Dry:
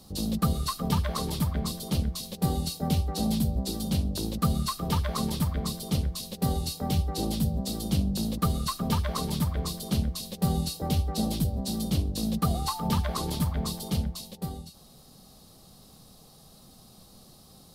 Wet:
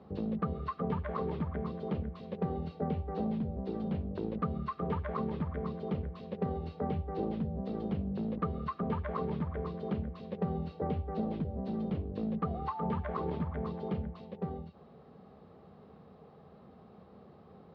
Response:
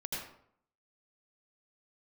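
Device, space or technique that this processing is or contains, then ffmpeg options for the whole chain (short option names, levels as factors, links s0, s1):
bass amplifier: -af "acompressor=threshold=0.0251:ratio=3,highpass=f=75:w=0.5412,highpass=f=75:w=1.3066,equalizer=f=120:t=q:w=4:g=-9,equalizer=f=290:t=q:w=4:g=-4,equalizer=f=430:t=q:w=4:g=8,lowpass=f=2100:w=0.5412,lowpass=f=2100:w=1.3066,volume=1.12"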